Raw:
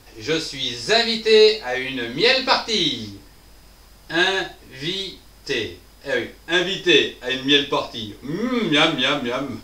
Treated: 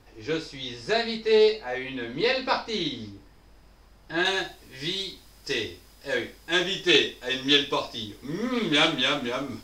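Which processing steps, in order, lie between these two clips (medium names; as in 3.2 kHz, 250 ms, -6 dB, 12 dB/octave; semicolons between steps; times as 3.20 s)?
treble shelf 3.5 kHz -10.5 dB, from 4.25 s +4 dB; loudspeaker Doppler distortion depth 0.1 ms; trim -5.5 dB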